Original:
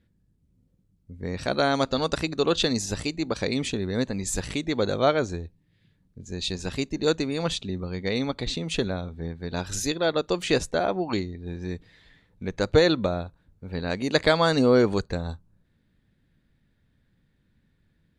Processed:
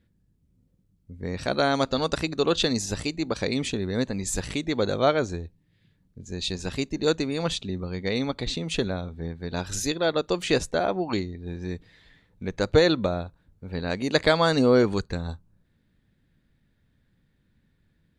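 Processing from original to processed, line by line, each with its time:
0:14.83–0:15.28: parametric band 600 Hz −5.5 dB 0.85 octaves

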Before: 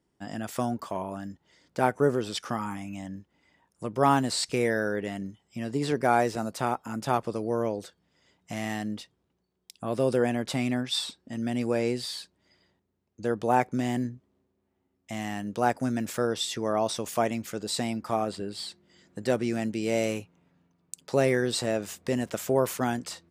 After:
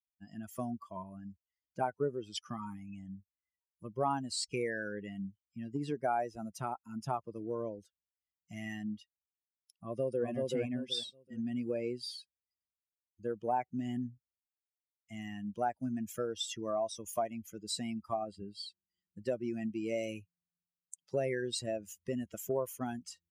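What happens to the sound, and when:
0:09.84–0:10.27: delay throw 380 ms, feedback 40%, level −1 dB
whole clip: spectral dynamics exaggerated over time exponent 2; dynamic equaliser 710 Hz, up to +6 dB, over −42 dBFS, Q 1.5; downward compressor 2.5 to 1, threshold −34 dBFS

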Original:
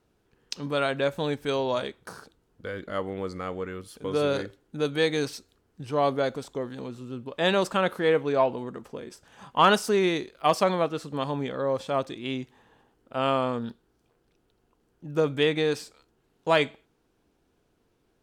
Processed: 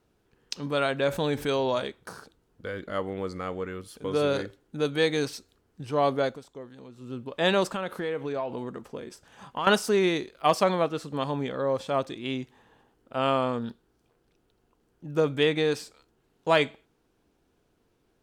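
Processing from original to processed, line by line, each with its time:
0:01.08–0:01.70: envelope flattener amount 50%
0:06.25–0:07.10: duck −10 dB, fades 0.15 s
0:07.66–0:09.67: downward compressor 4 to 1, threshold −28 dBFS

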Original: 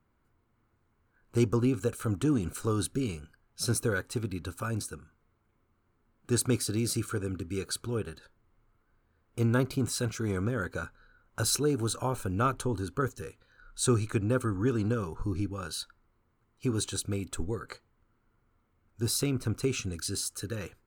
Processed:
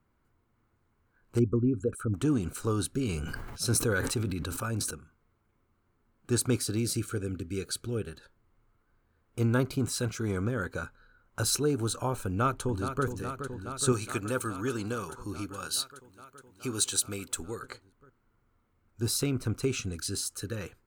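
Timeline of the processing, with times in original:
0:01.39–0:02.14: spectral envelope exaggerated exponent 2
0:03.00–0:04.91: level that may fall only so fast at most 26 dB per second
0:06.82–0:08.11: parametric band 1,000 Hz −11.5 dB 0.56 octaves
0:12.26–0:13.05: delay throw 420 ms, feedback 80%, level −8.5 dB
0:13.92–0:17.63: spectral tilt +2.5 dB per octave

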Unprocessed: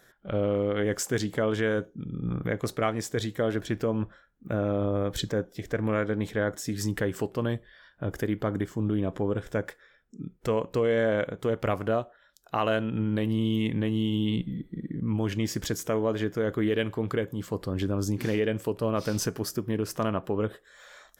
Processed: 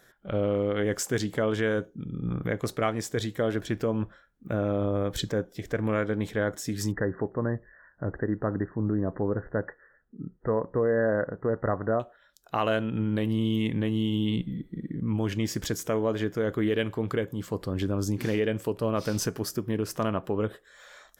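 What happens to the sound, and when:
0:06.92–0:12.00: linear-phase brick-wall low-pass 2,000 Hz

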